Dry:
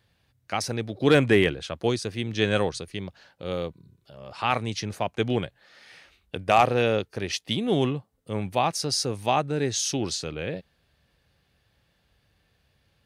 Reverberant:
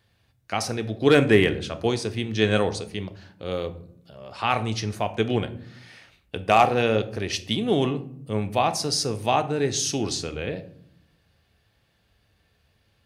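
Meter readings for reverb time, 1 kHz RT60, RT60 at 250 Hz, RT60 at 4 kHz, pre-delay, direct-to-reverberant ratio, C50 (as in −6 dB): 0.65 s, 0.55 s, 1.1 s, 0.35 s, 3 ms, 9.0 dB, 15.0 dB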